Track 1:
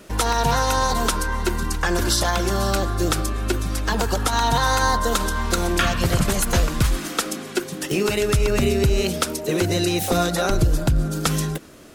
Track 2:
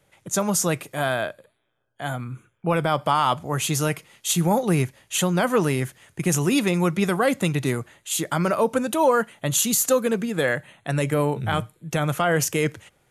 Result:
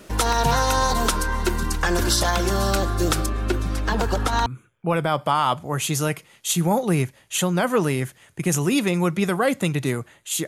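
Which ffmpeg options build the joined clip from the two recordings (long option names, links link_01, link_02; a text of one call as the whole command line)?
ffmpeg -i cue0.wav -i cue1.wav -filter_complex "[0:a]asettb=1/sr,asplit=3[link_01][link_02][link_03];[link_01]atrim=end=3.264[link_04];[link_02]atrim=start=3.26:end=4.46,asetpts=PTS-STARTPTS,afade=type=in:duration=0.004:curve=qsin,afade=type=out:start_time=1.196:duration=0.004:curve=qsin,highshelf=frequency=4600:gain=-9.5[link_05];[link_03]atrim=start=4.456[link_06];[link_04][link_05]acrossfade=duration=0.004:curve1=hsin:curve2=qsin[link_07];[link_07][link_06]acrossfade=duration=0.004:curve1=qsin:curve2=hsin,apad=whole_dur=10.47,atrim=end=10.47,atrim=end=4.462[link_08];[1:a]atrim=start=2.258:end=8.27[link_09];[link_08][link_09]acrossfade=duration=0.004:curve1=hsin:curve2=hsin" out.wav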